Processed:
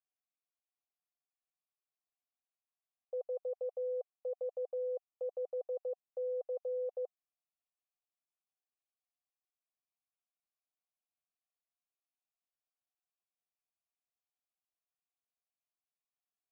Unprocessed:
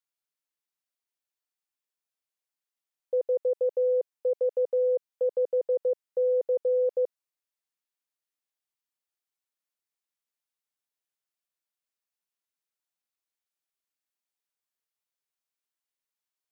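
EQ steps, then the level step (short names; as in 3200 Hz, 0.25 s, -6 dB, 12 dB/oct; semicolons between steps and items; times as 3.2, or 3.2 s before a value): vowel filter a; HPF 330 Hz; +2.0 dB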